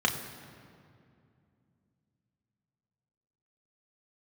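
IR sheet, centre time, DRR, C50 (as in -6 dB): 29 ms, 1.5 dB, 9.0 dB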